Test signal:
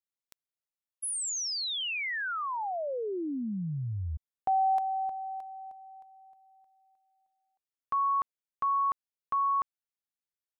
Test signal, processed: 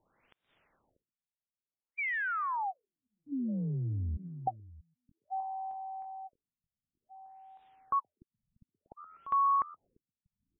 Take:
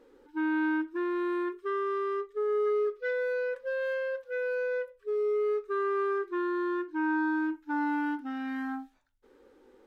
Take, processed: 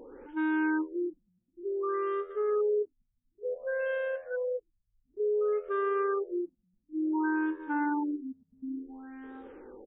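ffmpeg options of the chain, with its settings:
ffmpeg -i in.wav -filter_complex "[0:a]asplit=2[link_01][link_02];[link_02]adelay=641.4,volume=-18dB,highshelf=frequency=4000:gain=-14.4[link_03];[link_01][link_03]amix=inputs=2:normalize=0,acompressor=mode=upward:threshold=-35dB:ratio=2.5:attack=0.15:release=116:knee=2.83:detection=peak,asplit=2[link_04][link_05];[link_05]asplit=3[link_06][link_07][link_08];[link_06]adelay=123,afreqshift=84,volume=-22dB[link_09];[link_07]adelay=246,afreqshift=168,volume=-29.1dB[link_10];[link_08]adelay=369,afreqshift=252,volume=-36.3dB[link_11];[link_09][link_10][link_11]amix=inputs=3:normalize=0[link_12];[link_04][link_12]amix=inputs=2:normalize=0,afftfilt=real='re*lt(b*sr/1024,210*pow(3900/210,0.5+0.5*sin(2*PI*0.56*pts/sr)))':imag='im*lt(b*sr/1024,210*pow(3900/210,0.5+0.5*sin(2*PI*0.56*pts/sr)))':win_size=1024:overlap=0.75" out.wav

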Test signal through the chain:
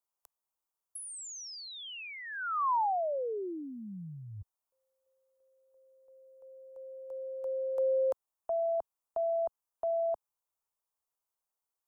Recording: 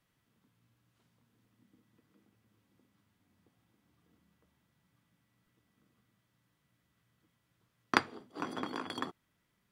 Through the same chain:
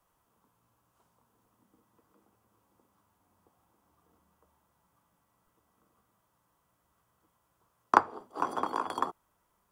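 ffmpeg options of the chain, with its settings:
ffmpeg -i in.wav -filter_complex "[0:a]equalizer=frequency=125:width_type=o:width=1:gain=-11,equalizer=frequency=250:width_type=o:width=1:gain=-8,equalizer=frequency=1000:width_type=o:width=1:gain=8,equalizer=frequency=2000:width_type=o:width=1:gain=-11,equalizer=frequency=4000:width_type=o:width=1:gain=-9,acrossover=split=240|800|2000[link_01][link_02][link_03][link_04];[link_04]acompressor=threshold=-50dB:ratio=6[link_05];[link_01][link_02][link_03][link_05]amix=inputs=4:normalize=0,volume=7dB" out.wav

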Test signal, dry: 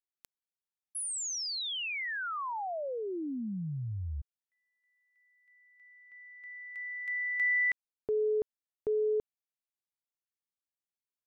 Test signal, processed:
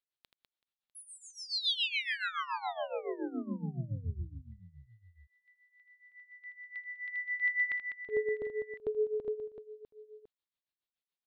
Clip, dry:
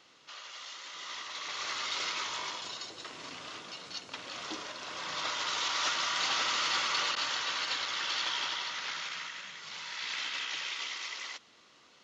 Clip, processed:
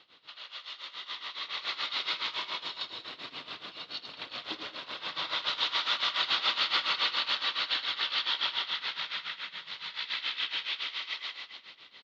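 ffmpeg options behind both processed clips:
ffmpeg -i in.wav -af "highshelf=frequency=5100:width_type=q:width=3:gain=-10,aecho=1:1:80|200|380|650|1055:0.631|0.398|0.251|0.158|0.1,tremolo=f=7.1:d=0.82" out.wav

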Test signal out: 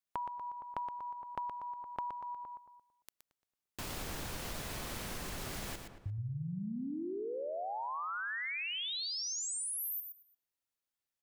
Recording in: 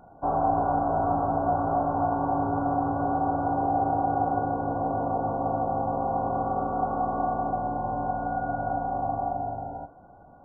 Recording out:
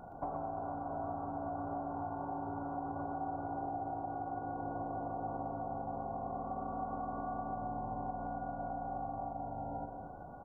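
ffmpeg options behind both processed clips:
ffmpeg -i in.wav -filter_complex "[0:a]asplit=2[link_01][link_02];[link_02]adelay=225,lowpass=frequency=1300:poles=1,volume=-13dB,asplit=2[link_03][link_04];[link_04]adelay=225,lowpass=frequency=1300:poles=1,volume=0.22,asplit=2[link_05][link_06];[link_06]adelay=225,lowpass=frequency=1300:poles=1,volume=0.22[link_07];[link_03][link_05][link_07]amix=inputs=3:normalize=0[link_08];[link_01][link_08]amix=inputs=2:normalize=0,acompressor=threshold=-39dB:ratio=12,asplit=2[link_09][link_10];[link_10]aecho=0:1:120:0.422[link_11];[link_09][link_11]amix=inputs=2:normalize=0,volume=1.5dB" out.wav

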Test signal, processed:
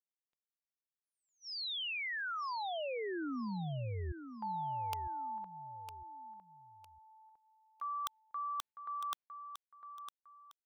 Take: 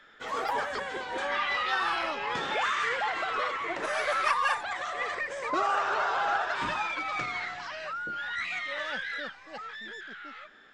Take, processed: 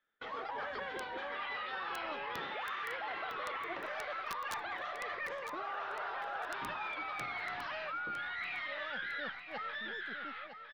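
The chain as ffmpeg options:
ffmpeg -i in.wav -af "lowpass=frequency=4100:width=0.5412,lowpass=frequency=4100:width=1.3066,agate=range=-28dB:threshold=-47dB:ratio=16:detection=peak,areverse,acompressor=threshold=-37dB:ratio=16,areverse,aeval=exprs='(mod(29.9*val(0)+1,2)-1)/29.9':channel_layout=same,aecho=1:1:956|1912|2868:0.335|0.0971|0.0282" out.wav

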